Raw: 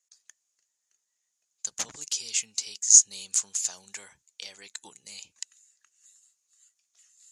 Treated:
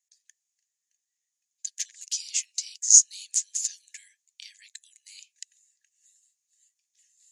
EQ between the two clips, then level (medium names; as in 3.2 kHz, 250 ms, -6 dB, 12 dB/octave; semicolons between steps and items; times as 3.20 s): dynamic bell 5.7 kHz, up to +6 dB, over -36 dBFS, Q 1.2; brick-wall FIR high-pass 1.6 kHz; -4.5 dB